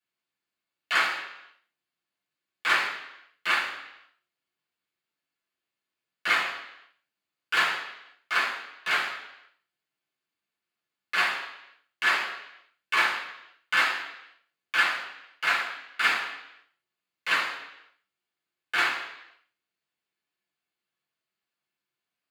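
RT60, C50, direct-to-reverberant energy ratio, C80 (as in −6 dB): 0.85 s, 5.5 dB, −7.0 dB, 8.5 dB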